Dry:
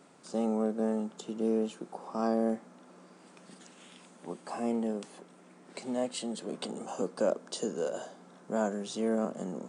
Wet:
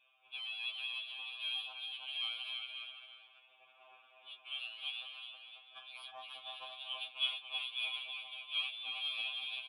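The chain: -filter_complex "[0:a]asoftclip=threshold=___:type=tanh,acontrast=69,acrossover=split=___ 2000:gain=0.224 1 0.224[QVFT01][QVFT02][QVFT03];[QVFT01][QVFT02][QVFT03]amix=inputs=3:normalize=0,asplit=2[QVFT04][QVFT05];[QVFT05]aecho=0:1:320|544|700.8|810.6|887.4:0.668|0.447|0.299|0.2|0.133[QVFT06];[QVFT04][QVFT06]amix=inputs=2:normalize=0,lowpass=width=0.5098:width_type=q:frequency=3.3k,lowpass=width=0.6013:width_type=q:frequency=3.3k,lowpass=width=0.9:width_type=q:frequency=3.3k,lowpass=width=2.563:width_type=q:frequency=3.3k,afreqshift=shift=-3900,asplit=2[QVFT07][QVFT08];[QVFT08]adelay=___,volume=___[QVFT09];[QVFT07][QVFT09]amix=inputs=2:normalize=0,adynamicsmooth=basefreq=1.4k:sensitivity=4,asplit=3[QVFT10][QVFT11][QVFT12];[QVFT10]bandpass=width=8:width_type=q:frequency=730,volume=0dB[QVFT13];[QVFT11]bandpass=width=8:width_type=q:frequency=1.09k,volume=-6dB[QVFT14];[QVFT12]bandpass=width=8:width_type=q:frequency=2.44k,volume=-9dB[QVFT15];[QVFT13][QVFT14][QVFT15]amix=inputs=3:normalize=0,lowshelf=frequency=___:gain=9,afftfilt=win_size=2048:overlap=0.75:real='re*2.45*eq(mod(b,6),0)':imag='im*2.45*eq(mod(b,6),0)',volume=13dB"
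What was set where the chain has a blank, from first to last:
-33dB, 290, 22, -10dB, 62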